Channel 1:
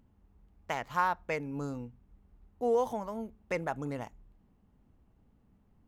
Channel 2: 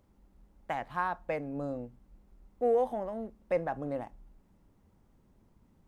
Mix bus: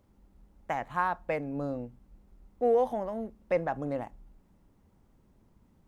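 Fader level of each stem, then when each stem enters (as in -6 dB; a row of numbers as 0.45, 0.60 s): -12.5, +1.0 dB; 0.00, 0.00 s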